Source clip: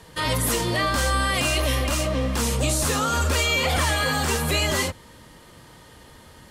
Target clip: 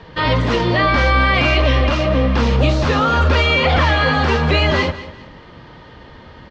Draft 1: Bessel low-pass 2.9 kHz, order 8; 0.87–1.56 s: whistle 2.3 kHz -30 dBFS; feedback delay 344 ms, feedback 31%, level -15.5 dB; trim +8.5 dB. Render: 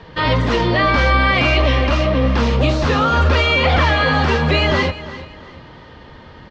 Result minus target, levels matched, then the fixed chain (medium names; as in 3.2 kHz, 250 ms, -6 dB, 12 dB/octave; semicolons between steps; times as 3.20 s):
echo 148 ms late
Bessel low-pass 2.9 kHz, order 8; 0.87–1.56 s: whistle 2.3 kHz -30 dBFS; feedback delay 196 ms, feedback 31%, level -15.5 dB; trim +8.5 dB